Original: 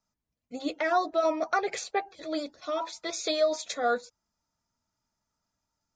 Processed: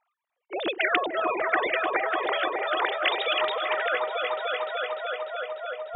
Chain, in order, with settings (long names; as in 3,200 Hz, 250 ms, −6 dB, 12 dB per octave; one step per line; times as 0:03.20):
three sine waves on the formant tracks
echo whose low-pass opens from repeat to repeat 297 ms, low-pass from 750 Hz, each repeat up 1 octave, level −6 dB
every bin compressed towards the loudest bin 4 to 1